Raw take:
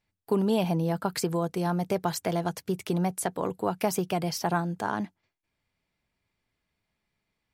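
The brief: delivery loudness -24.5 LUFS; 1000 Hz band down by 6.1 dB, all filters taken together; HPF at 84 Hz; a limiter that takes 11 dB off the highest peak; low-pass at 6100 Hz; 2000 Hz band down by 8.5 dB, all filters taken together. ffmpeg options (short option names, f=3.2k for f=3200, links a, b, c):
-af "highpass=84,lowpass=6.1k,equalizer=f=1k:t=o:g=-7,equalizer=f=2k:t=o:g=-9,volume=11dB,alimiter=limit=-14dB:level=0:latency=1"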